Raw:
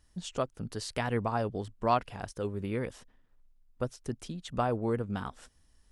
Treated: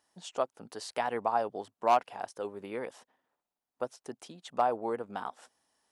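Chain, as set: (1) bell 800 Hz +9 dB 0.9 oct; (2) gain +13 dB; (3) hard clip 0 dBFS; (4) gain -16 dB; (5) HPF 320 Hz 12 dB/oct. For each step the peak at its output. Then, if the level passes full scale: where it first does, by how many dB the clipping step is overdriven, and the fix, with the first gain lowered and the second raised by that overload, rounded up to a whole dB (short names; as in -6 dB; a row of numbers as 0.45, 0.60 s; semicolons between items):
-7.5, +5.5, 0.0, -16.0, -13.0 dBFS; step 2, 5.5 dB; step 2 +7 dB, step 4 -10 dB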